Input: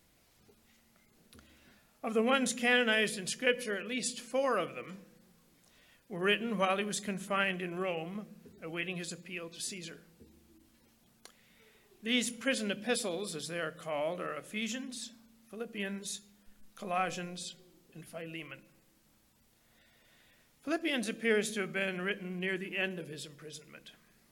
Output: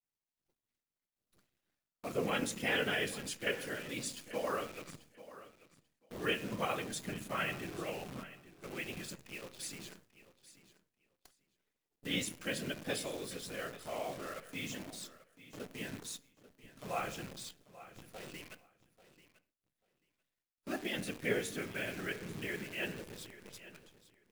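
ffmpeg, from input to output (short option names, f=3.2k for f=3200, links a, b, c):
-filter_complex "[0:a]afftfilt=real='hypot(re,im)*cos(2*PI*random(0))':imag='hypot(re,im)*sin(2*PI*random(1))':win_size=512:overlap=0.75,bandreject=f=75.91:t=h:w=4,bandreject=f=151.82:t=h:w=4,bandreject=f=227.73:t=h:w=4,bandreject=f=303.64:t=h:w=4,bandreject=f=379.55:t=h:w=4,bandreject=f=455.46:t=h:w=4,bandreject=f=531.37:t=h:w=4,bandreject=f=607.28:t=h:w=4,bandreject=f=683.19:t=h:w=4,bandreject=f=759.1:t=h:w=4,bandreject=f=835.01:t=h:w=4,bandreject=f=910.92:t=h:w=4,bandreject=f=986.83:t=h:w=4,bandreject=f=1.06274k:t=h:w=4,bandreject=f=1.13865k:t=h:w=4,bandreject=f=1.21456k:t=h:w=4,bandreject=f=1.29047k:t=h:w=4,bandreject=f=1.36638k:t=h:w=4,bandreject=f=1.44229k:t=h:w=4,bandreject=f=1.5182k:t=h:w=4,bandreject=f=1.59411k:t=h:w=4,bandreject=f=1.67002k:t=h:w=4,bandreject=f=1.74593k:t=h:w=4,bandreject=f=1.82184k:t=h:w=4,bandreject=f=1.89775k:t=h:w=4,bandreject=f=1.97366k:t=h:w=4,bandreject=f=2.04957k:t=h:w=4,bandreject=f=2.12548k:t=h:w=4,bandreject=f=2.20139k:t=h:w=4,bandreject=f=2.2773k:t=h:w=4,bandreject=f=2.35321k:t=h:w=4,bandreject=f=2.42912k:t=h:w=4,bandreject=f=2.50503k:t=h:w=4,bandreject=f=2.58094k:t=h:w=4,bandreject=f=2.65685k:t=h:w=4,bandreject=f=2.73276k:t=h:w=4,bandreject=f=2.80867k:t=h:w=4,bandreject=f=2.88458k:t=h:w=4,acrusher=bits=9:dc=4:mix=0:aa=0.000001,agate=range=-33dB:threshold=-59dB:ratio=3:detection=peak,asplit=2[a][b];[b]aecho=0:1:839|1678:0.15|0.0239[c];[a][c]amix=inputs=2:normalize=0,volume=1dB"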